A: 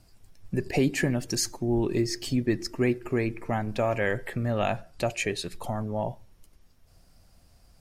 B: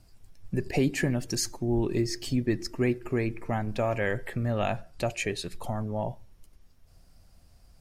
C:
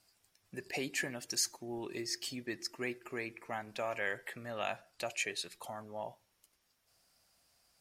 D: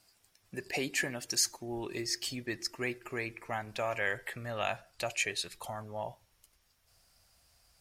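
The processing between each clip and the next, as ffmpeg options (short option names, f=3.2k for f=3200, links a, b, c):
-af "lowshelf=f=110:g=4.5,volume=-2dB"
-af "highpass=f=1.3k:p=1,volume=-2dB"
-af "asubboost=boost=4:cutoff=110,volume=4dB"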